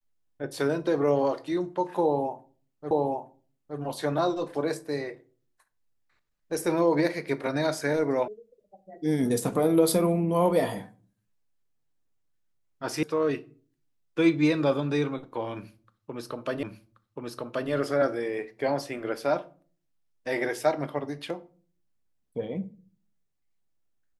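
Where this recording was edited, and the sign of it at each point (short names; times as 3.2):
2.91 repeat of the last 0.87 s
8.28 sound cut off
13.03 sound cut off
16.63 repeat of the last 1.08 s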